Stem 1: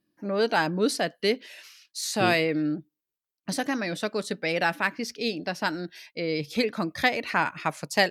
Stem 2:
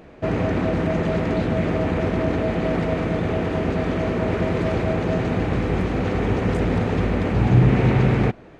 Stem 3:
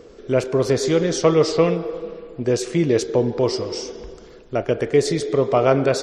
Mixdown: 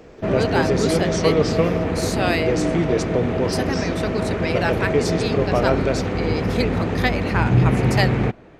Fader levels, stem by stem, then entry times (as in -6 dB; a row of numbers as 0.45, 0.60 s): +0.5, -1.0, -3.5 dB; 0.00, 0.00, 0.00 s